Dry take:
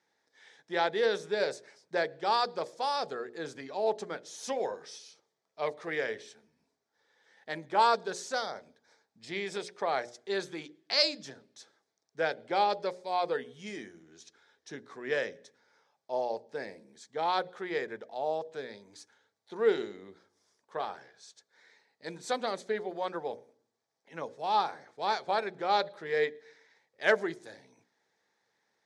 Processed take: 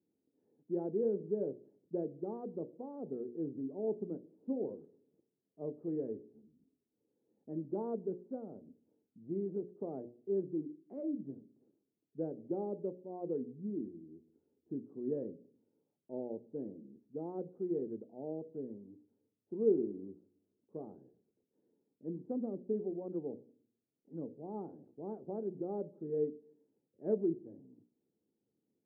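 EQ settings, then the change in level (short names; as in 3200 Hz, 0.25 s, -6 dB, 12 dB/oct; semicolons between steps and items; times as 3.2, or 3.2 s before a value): ladder low-pass 350 Hz, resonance 45%; +10.0 dB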